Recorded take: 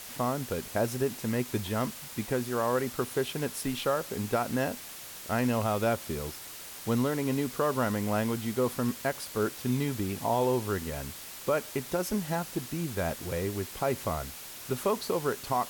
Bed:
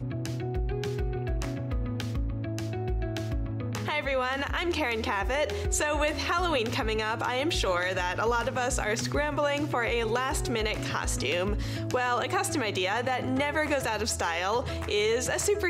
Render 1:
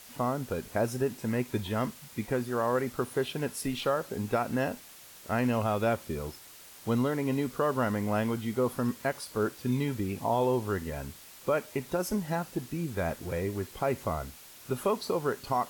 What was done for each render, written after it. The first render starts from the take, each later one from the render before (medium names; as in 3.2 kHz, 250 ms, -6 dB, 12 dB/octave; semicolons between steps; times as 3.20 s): noise print and reduce 7 dB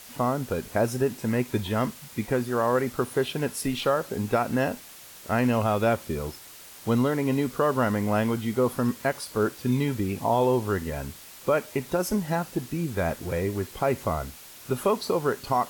trim +4.5 dB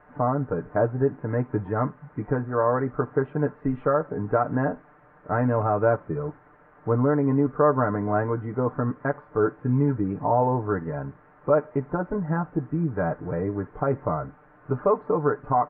steep low-pass 1.6 kHz 36 dB/octave; comb 6.7 ms, depth 75%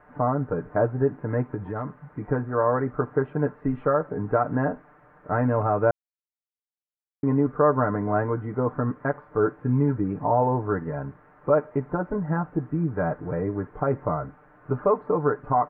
1.54–2.25 s: compression, threshold -26 dBFS; 5.91–7.23 s: mute